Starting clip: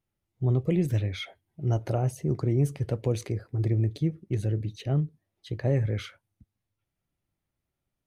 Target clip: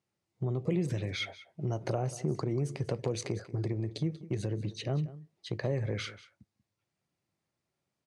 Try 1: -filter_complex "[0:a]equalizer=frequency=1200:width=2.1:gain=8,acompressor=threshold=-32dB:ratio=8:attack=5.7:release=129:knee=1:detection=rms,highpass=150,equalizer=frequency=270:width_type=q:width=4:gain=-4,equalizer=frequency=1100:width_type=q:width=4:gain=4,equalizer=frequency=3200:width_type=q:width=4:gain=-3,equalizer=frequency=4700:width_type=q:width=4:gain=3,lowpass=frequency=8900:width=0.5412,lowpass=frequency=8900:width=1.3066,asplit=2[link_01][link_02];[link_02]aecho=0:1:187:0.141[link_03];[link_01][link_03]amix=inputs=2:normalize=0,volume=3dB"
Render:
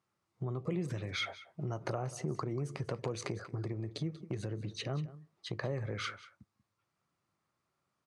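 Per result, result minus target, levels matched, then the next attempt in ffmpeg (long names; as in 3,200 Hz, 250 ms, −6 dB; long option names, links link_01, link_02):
downward compressor: peak gain reduction +5.5 dB; 1,000 Hz band +4.5 dB
-filter_complex "[0:a]equalizer=frequency=1200:width=2.1:gain=8,acompressor=threshold=-26dB:ratio=8:attack=5.7:release=129:knee=1:detection=rms,highpass=150,equalizer=frequency=270:width_type=q:width=4:gain=-4,equalizer=frequency=1100:width_type=q:width=4:gain=4,equalizer=frequency=3200:width_type=q:width=4:gain=-3,equalizer=frequency=4700:width_type=q:width=4:gain=3,lowpass=frequency=8900:width=0.5412,lowpass=frequency=8900:width=1.3066,asplit=2[link_01][link_02];[link_02]aecho=0:1:187:0.141[link_03];[link_01][link_03]amix=inputs=2:normalize=0,volume=3dB"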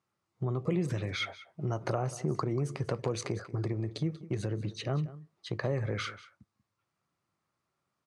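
1,000 Hz band +4.0 dB
-filter_complex "[0:a]equalizer=frequency=1200:width=2.1:gain=-3.5,acompressor=threshold=-26dB:ratio=8:attack=5.7:release=129:knee=1:detection=rms,highpass=150,equalizer=frequency=270:width_type=q:width=4:gain=-4,equalizer=frequency=1100:width_type=q:width=4:gain=4,equalizer=frequency=3200:width_type=q:width=4:gain=-3,equalizer=frequency=4700:width_type=q:width=4:gain=3,lowpass=frequency=8900:width=0.5412,lowpass=frequency=8900:width=1.3066,asplit=2[link_01][link_02];[link_02]aecho=0:1:187:0.141[link_03];[link_01][link_03]amix=inputs=2:normalize=0,volume=3dB"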